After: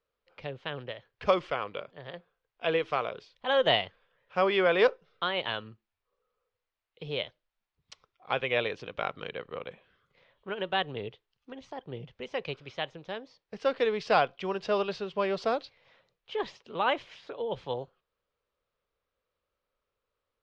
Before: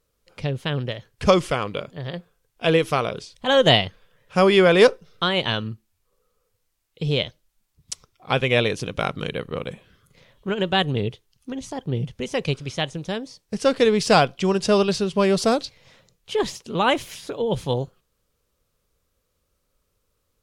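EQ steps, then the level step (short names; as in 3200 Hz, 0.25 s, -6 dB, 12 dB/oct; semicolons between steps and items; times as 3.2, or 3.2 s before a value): air absorption 160 m; three-band isolator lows -13 dB, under 420 Hz, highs -12 dB, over 4800 Hz; -5.5 dB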